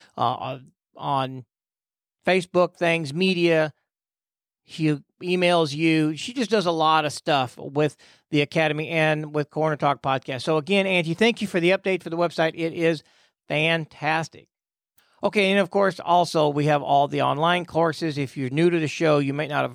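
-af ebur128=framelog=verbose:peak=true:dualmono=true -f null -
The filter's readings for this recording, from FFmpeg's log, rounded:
Integrated loudness:
  I:         -19.6 LUFS
  Threshold: -30.1 LUFS
Loudness range:
  LRA:         2.9 LU
  Threshold: -40.1 LUFS
  LRA low:   -21.6 LUFS
  LRA high:  -18.7 LUFS
True peak:
  Peak:       -7.3 dBFS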